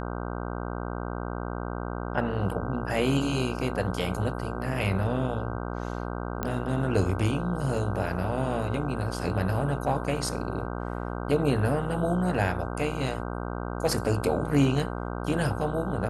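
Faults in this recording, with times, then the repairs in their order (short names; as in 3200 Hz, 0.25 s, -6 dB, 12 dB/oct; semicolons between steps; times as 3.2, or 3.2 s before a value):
buzz 60 Hz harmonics 26 -33 dBFS
6.43 pop -15 dBFS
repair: de-click; de-hum 60 Hz, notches 26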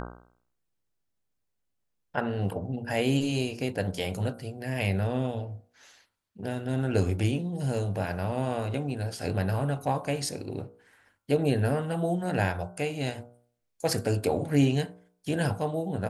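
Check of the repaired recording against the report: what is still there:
none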